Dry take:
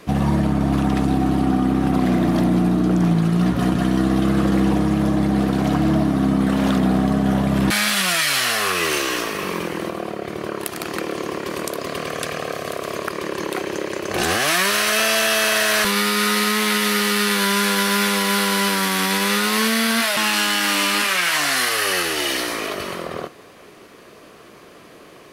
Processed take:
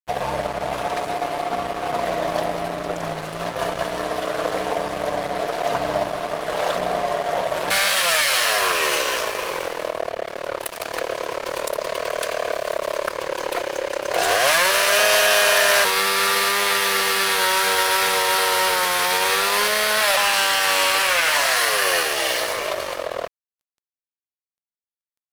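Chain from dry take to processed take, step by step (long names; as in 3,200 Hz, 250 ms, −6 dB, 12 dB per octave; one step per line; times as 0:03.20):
low shelf with overshoot 380 Hz −13 dB, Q 3
hum removal 66.63 Hz, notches 4
in parallel at −3 dB: soft clipping −18.5 dBFS, distortion −11 dB
on the sum: phase-vocoder pitch shift with formants kept −1 semitone
dead-zone distortion −27.5 dBFS
level −1 dB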